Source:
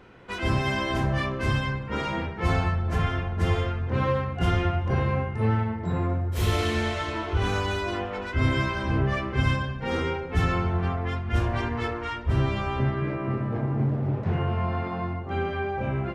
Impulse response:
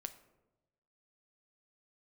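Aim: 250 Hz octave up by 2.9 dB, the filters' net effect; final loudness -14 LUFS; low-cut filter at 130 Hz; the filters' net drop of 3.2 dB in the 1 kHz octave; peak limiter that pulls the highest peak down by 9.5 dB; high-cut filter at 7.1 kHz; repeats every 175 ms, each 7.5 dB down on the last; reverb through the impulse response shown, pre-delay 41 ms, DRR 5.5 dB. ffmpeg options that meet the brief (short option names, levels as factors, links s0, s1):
-filter_complex "[0:a]highpass=130,lowpass=7100,equalizer=f=250:t=o:g=5,equalizer=f=1000:t=o:g=-4.5,alimiter=limit=0.075:level=0:latency=1,aecho=1:1:175|350|525|700|875:0.422|0.177|0.0744|0.0312|0.0131,asplit=2[s0][s1];[1:a]atrim=start_sample=2205,adelay=41[s2];[s1][s2]afir=irnorm=-1:irlink=0,volume=0.794[s3];[s0][s3]amix=inputs=2:normalize=0,volume=6.31"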